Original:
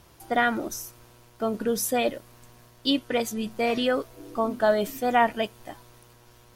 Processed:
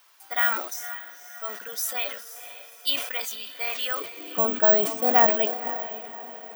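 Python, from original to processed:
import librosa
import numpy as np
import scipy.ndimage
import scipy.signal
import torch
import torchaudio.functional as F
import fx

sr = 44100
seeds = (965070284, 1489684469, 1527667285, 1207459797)

y = fx.cheby1_highpass(x, sr, hz=fx.steps((0.0, 1300.0), (4.0, 320.0)), order=2)
y = fx.echo_diffused(y, sr, ms=514, feedback_pct=44, wet_db=-12)
y = (np.kron(scipy.signal.resample_poly(y, 1, 2), np.eye(2)[0]) * 2)[:len(y)]
y = fx.sustainer(y, sr, db_per_s=79.0)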